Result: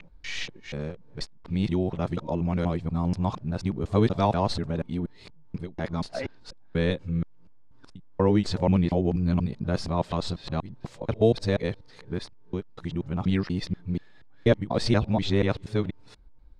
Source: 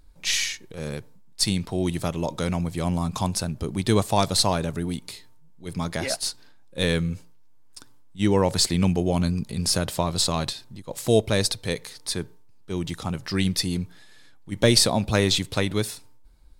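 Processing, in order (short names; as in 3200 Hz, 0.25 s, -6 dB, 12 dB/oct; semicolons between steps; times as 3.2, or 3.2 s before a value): local time reversal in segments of 0.241 s; tape spacing loss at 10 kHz 29 dB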